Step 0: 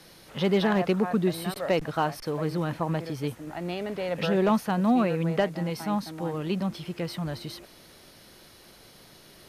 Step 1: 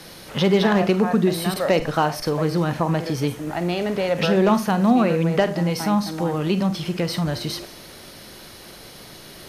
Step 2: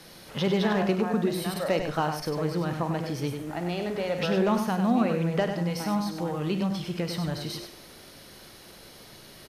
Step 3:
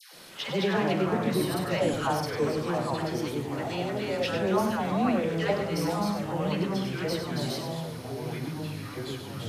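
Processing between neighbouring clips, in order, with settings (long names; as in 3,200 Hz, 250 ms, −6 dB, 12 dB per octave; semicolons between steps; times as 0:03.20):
four-comb reverb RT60 0.31 s, combs from 31 ms, DRR 11 dB; dynamic equaliser 5,900 Hz, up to +4 dB, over −56 dBFS, Q 2; in parallel at +3 dB: downward compressor, threshold −31 dBFS, peak gain reduction 13 dB; on the sum: level +2.5 dB
single-tap delay 98 ms −7 dB; level −7.5 dB
low-shelf EQ 140 Hz −11 dB; all-pass dispersion lows, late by 138 ms, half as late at 1,000 Hz; delay with pitch and tempo change per echo 128 ms, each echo −4 semitones, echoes 3, each echo −6 dB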